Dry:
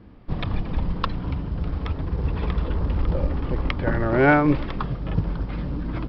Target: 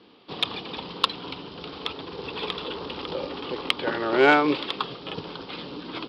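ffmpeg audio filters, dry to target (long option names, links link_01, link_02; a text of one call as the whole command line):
ffmpeg -i in.wav -af "highpass=410,equalizer=frequency=420:width_type=q:width=4:gain=4,equalizer=frequency=620:width_type=q:width=4:gain=-6,equalizer=frequency=1700:width_type=q:width=4:gain=-3,lowpass=frequency=4200:width=0.5412,lowpass=frequency=4200:width=1.3066,aexciter=amount=3.4:drive=9:freq=2900,volume=2dB" out.wav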